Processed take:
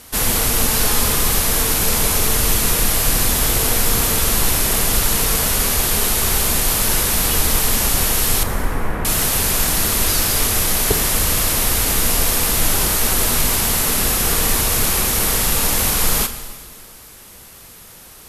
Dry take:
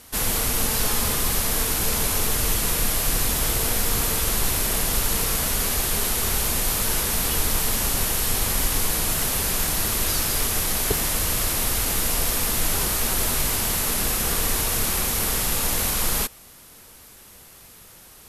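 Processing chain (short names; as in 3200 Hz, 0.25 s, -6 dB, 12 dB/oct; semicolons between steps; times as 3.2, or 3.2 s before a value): 8.43–9.05 LPF 1900 Hz 24 dB/oct; reverb RT60 1.8 s, pre-delay 17 ms, DRR 10 dB; gain +5.5 dB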